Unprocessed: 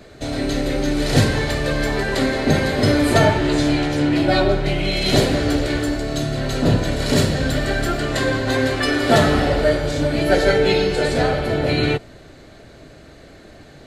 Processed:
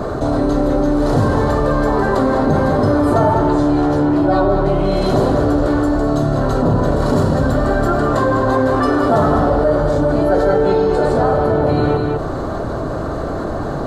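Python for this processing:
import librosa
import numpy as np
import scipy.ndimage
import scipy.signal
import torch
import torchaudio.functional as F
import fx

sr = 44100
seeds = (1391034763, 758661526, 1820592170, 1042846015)

p1 = fx.high_shelf_res(x, sr, hz=1600.0, db=-12.0, q=3.0)
p2 = p1 + fx.echo_single(p1, sr, ms=201, db=-11.0, dry=0)
p3 = fx.env_flatten(p2, sr, amount_pct=70)
y = p3 * 10.0 ** (-2.5 / 20.0)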